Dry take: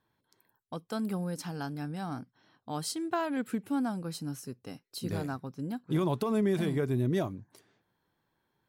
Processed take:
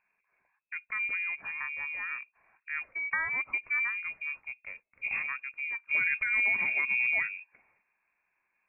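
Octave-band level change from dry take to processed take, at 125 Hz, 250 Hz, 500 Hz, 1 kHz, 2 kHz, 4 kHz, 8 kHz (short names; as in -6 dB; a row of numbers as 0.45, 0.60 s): under -25 dB, under -25 dB, -21.5 dB, -6.0 dB, +18.5 dB, under -10 dB, under -35 dB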